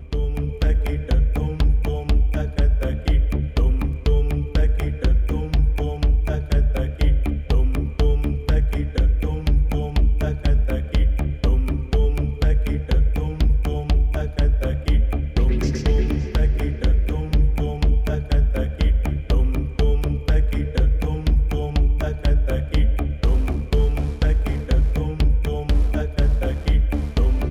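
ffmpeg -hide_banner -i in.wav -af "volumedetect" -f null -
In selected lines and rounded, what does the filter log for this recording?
mean_volume: -18.3 dB
max_volume: -9.4 dB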